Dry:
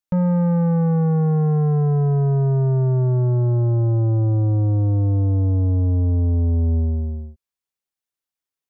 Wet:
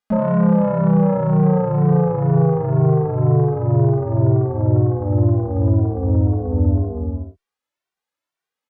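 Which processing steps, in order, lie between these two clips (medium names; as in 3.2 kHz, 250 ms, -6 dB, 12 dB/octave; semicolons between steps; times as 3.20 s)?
harmony voices -4 st -10 dB, +3 st -1 dB; overdrive pedal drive 14 dB, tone 1.4 kHz, clips at -9 dBFS; endless flanger 2.1 ms +2 Hz; trim +4.5 dB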